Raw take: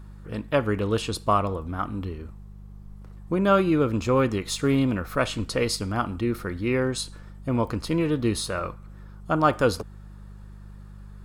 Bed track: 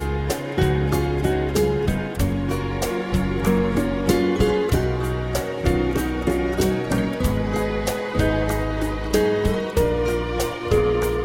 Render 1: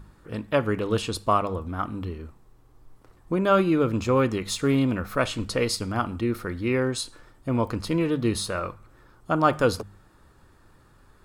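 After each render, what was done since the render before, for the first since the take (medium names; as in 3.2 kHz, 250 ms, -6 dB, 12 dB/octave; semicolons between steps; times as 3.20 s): de-hum 50 Hz, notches 4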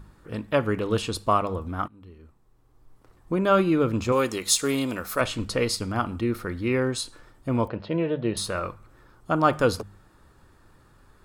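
1.88–3.40 s: fade in, from -23.5 dB; 4.12–5.21 s: tone controls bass -10 dB, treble +12 dB; 7.68–8.37 s: cabinet simulation 130–3200 Hz, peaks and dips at 270 Hz -9 dB, 600 Hz +9 dB, 1.2 kHz -9 dB, 2.2 kHz -5 dB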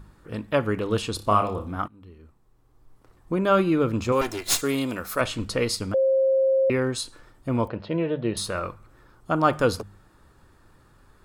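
1.16–1.76 s: flutter echo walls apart 4.9 m, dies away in 0.27 s; 4.21–4.62 s: comb filter that takes the minimum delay 2.9 ms; 5.94–6.70 s: bleep 533 Hz -17 dBFS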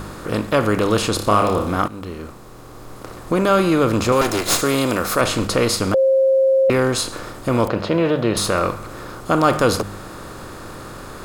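spectral levelling over time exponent 0.6; in parallel at -3 dB: peak limiter -15.5 dBFS, peak gain reduction 11.5 dB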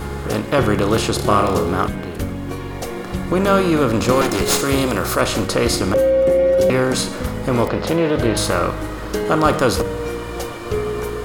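add bed track -3.5 dB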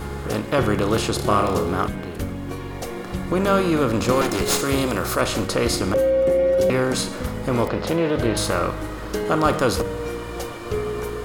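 trim -3.5 dB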